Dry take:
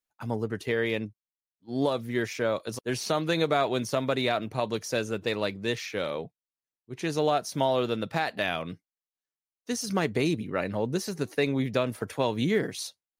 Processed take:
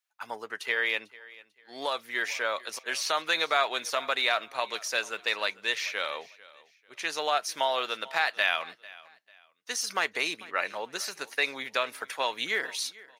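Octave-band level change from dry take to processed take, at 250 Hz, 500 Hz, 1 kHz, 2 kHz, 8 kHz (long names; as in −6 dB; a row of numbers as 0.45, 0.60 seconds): −17.5, −7.0, +1.0, +6.0, +2.5 decibels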